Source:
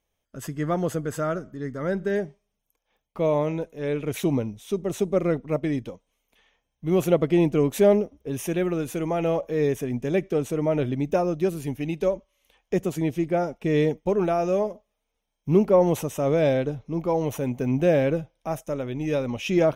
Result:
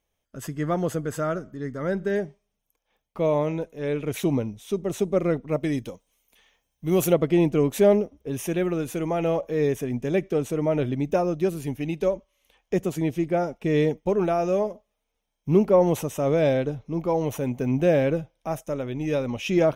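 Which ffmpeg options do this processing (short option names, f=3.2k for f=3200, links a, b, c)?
-filter_complex "[0:a]asettb=1/sr,asplit=3[a][b][c];[a]atrim=end=5.604[d];[b]atrim=start=5.6:end=7.13,asetpts=PTS-STARTPTS,afade=t=in:d=0.004:c=qsin,afade=t=out:st=1.526:d=0.004:c=qsin,highshelf=f=5.3k:g=12[e];[c]atrim=start=7.126[f];[d][e]acrossfade=d=0.004:c1=hsin:c2=qsin[g];[g][f]acrossfade=d=0.004:c1=qsin:c2=hsin"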